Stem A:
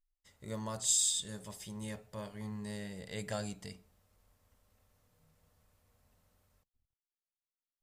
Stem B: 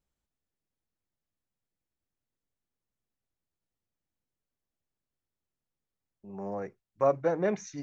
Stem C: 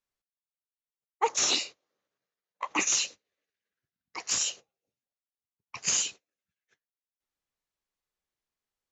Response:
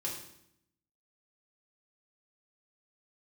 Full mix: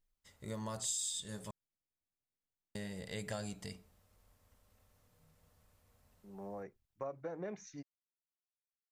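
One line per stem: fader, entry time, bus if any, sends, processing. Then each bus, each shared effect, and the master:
+1.0 dB, 0.00 s, muted 1.51–2.75, no send, dry
-9.0 dB, 0.00 s, no send, compressor 2:1, threshold -30 dBFS, peak gain reduction 6.5 dB
off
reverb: off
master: compressor 3:1, threshold -38 dBFS, peak gain reduction 10 dB

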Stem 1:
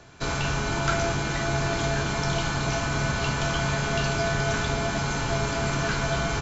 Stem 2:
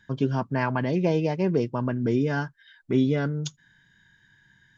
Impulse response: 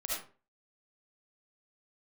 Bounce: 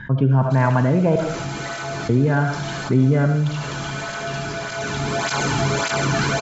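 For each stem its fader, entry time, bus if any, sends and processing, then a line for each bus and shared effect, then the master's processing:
+2.0 dB, 0.30 s, send -21.5 dB, tape flanging out of phase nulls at 1.7 Hz, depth 2.1 ms; auto duck -19 dB, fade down 0.75 s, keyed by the second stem
+2.5 dB, 0.00 s, muted 1.16–2.09, send -6.5 dB, LPF 1600 Hz 12 dB/oct; bell 360 Hz -4.5 dB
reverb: on, RT60 0.40 s, pre-delay 30 ms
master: bell 130 Hz +7 dB 0.22 oct; fast leveller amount 50%

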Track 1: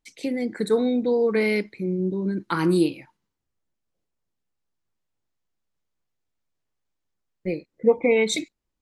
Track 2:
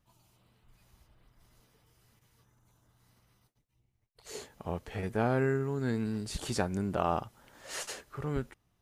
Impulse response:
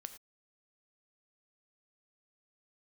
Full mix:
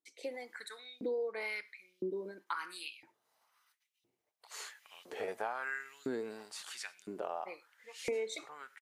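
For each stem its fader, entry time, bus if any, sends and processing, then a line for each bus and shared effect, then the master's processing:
-14.0 dB, 0.00 s, send -4.5 dB, dry
-2.5 dB, 0.25 s, send -7.5 dB, auto duck -18 dB, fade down 1.30 s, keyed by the first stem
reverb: on, pre-delay 3 ms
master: LFO high-pass saw up 0.99 Hz 300–3600 Hz; compressor 5:1, threshold -34 dBFS, peak gain reduction 10.5 dB

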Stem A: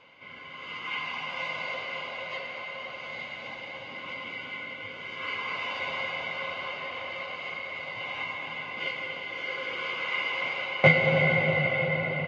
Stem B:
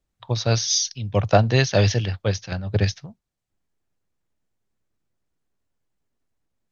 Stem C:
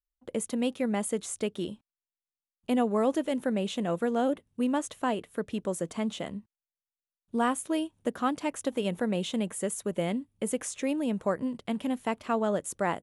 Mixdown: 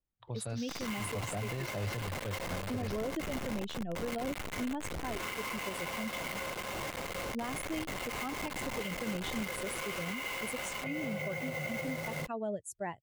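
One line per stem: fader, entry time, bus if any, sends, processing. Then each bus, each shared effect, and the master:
-1.0 dB, 0.00 s, no send, level-crossing sampler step -30 dBFS; compressor, threshold -33 dBFS, peak gain reduction 18 dB
-12.5 dB, 0.00 s, no send, Bessel low-pass 3100 Hz, order 2; slew limiter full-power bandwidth 120 Hz
-3.0 dB, 0.00 s, no send, per-bin expansion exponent 2; bell 1300 Hz -6 dB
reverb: off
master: limiter -28 dBFS, peak gain reduction 10.5 dB

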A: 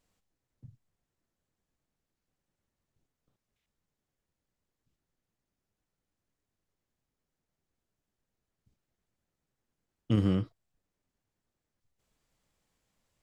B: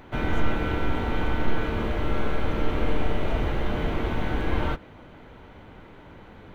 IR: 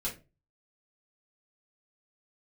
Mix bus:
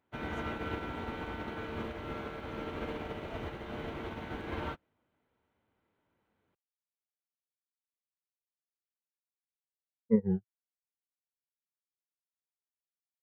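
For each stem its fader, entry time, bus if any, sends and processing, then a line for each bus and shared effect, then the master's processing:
-5.5 dB, 0.00 s, no send, moving spectral ripple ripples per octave 0.94, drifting -1.3 Hz, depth 21 dB; band shelf 1100 Hz +15 dB 2.8 oct; spectral expander 2.5:1
+1.5 dB, 0.00 s, send -17.5 dB, dry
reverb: on, RT60 0.30 s, pre-delay 3 ms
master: HPF 59 Hz; low shelf 220 Hz -4.5 dB; upward expander 2.5:1, over -41 dBFS

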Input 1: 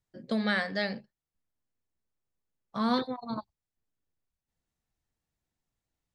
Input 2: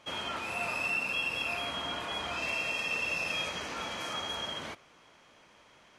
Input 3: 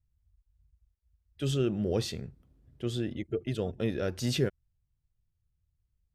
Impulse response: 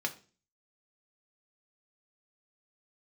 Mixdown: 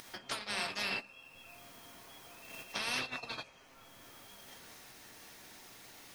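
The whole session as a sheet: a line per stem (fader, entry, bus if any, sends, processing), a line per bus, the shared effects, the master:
0.0 dB, 0.00 s, bus A, send -10 dB, high shelf 2100 Hz +4 dB; upward compressor, threshold -32 dBFS; spectral compressor 10:1
-8.0 dB, 0.00 s, no bus, no send, bell 710 Hz +3 dB 0.22 oct; comb 7.5 ms, depth 44%
off
bus A: 0.0 dB, compressor 12:1, threshold -42 dBFS, peak gain reduction 15.5 dB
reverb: on, RT60 0.35 s, pre-delay 3 ms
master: gate -35 dBFS, range -15 dB

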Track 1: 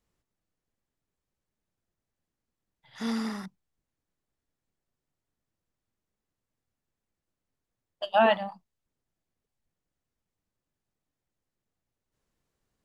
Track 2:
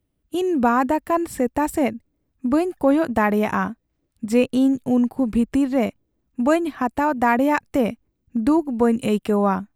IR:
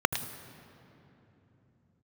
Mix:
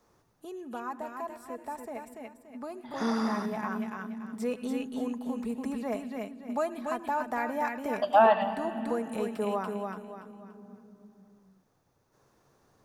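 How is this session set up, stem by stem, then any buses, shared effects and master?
0.0 dB, 0.00 s, send -10.5 dB, no echo send, dry
3.27 s -22.5 dB -> 3.9 s -12.5 dB, 0.10 s, send -18 dB, echo send -3.5 dB, low shelf 380 Hz -10 dB; comb 4.7 ms, depth 49%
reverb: on, RT60 3.2 s, pre-delay 76 ms
echo: feedback echo 0.287 s, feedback 26%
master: three-band squash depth 40%

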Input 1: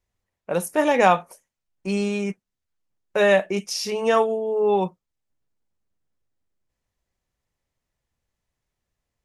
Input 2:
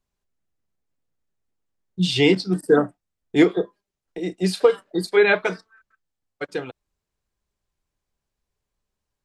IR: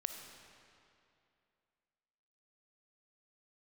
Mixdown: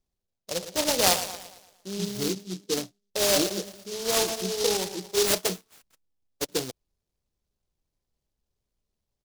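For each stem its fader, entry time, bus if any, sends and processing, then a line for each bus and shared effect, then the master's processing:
+1.0 dB, 0.00 s, no send, echo send -11 dB, Wiener smoothing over 25 samples; low shelf 320 Hz -10 dB; flange 0.82 Hz, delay 8 ms, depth 6 ms, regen +87%
-0.5 dB, 0.00 s, no send, no echo send, auto duck -12 dB, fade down 0.40 s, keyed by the first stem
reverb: off
echo: feedback echo 0.114 s, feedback 47%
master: LPF 2700 Hz 24 dB/oct; noise-modulated delay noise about 4700 Hz, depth 0.22 ms

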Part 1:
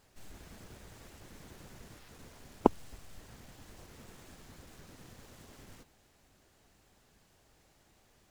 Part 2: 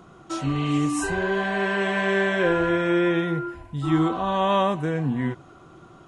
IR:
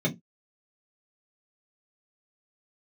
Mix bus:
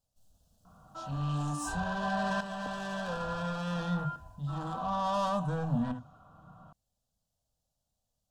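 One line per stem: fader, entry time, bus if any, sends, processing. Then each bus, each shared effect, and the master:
-14.0 dB, 0.00 s, no send, band shelf 1400 Hz -10 dB
+2.0 dB, 0.65 s, send -23 dB, low-pass opened by the level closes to 2100 Hz, open at -17.5 dBFS; soft clip -23.5 dBFS, distortion -10 dB; tremolo saw up 0.57 Hz, depth 65%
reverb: on, pre-delay 3 ms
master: fixed phaser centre 880 Hz, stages 4

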